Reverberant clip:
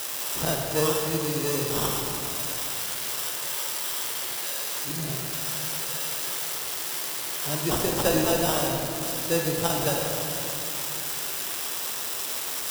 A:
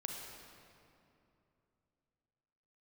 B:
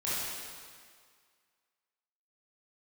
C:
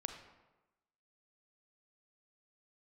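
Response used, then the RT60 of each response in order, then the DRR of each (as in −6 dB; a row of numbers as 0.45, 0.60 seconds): A; 2.8, 1.9, 1.1 seconds; 0.5, −10.5, 5.5 decibels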